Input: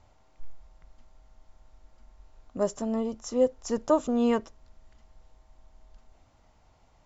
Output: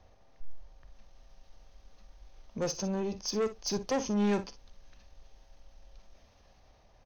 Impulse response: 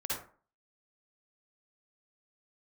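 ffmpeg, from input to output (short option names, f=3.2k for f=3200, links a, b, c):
-filter_complex "[0:a]acrossover=split=110|2400[a][b][c];[c]dynaudnorm=f=260:g=7:m=7dB[d];[a][b][d]amix=inputs=3:normalize=0,asoftclip=type=tanh:threshold=-25.5dB,asetrate=38170,aresample=44100,atempo=1.15535,aecho=1:1:44|59:0.168|0.188"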